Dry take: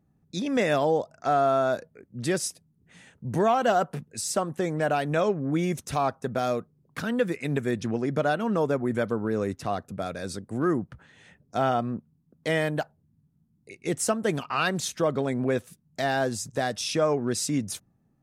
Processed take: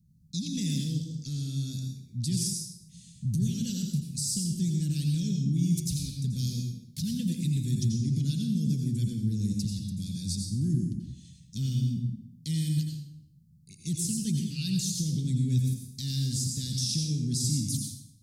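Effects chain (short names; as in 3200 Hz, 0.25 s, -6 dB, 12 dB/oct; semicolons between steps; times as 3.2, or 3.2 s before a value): Chebyshev band-stop 180–4400 Hz, order 3; limiter -28.5 dBFS, peak gain reduction 11 dB; 16.2–16.89 band noise 1200–8600 Hz -77 dBFS; reverb RT60 0.70 s, pre-delay 79 ms, DRR 2 dB; gain +6 dB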